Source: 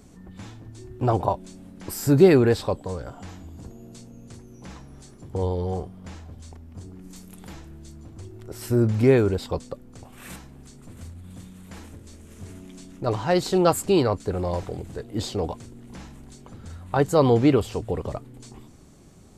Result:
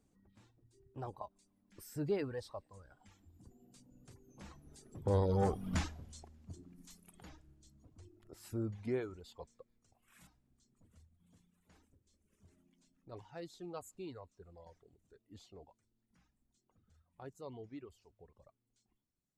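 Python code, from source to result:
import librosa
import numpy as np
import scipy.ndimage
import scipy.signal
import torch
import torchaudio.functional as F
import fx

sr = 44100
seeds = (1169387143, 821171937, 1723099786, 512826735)

p1 = fx.doppler_pass(x, sr, speed_mps=18, closest_m=2.3, pass_at_s=5.71)
p2 = fx.fold_sine(p1, sr, drive_db=5, ceiling_db=-25.5)
p3 = p1 + F.gain(torch.from_numpy(p2), -6.0).numpy()
p4 = fx.echo_wet_highpass(p3, sr, ms=146, feedback_pct=76, hz=1600.0, wet_db=-23.5)
p5 = fx.dereverb_blind(p4, sr, rt60_s=2.0)
y = F.gain(torch.from_numpy(p5), 2.0).numpy()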